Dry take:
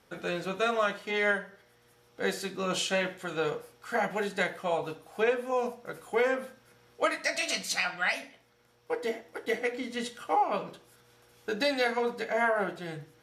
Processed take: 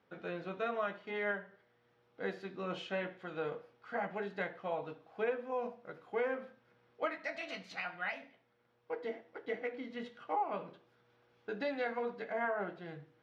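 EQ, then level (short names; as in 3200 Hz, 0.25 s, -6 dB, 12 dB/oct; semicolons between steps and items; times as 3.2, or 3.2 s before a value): HPF 110 Hz 12 dB/oct; dynamic EQ 4700 Hz, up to -4 dB, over -44 dBFS, Q 1.2; air absorption 270 m; -7.0 dB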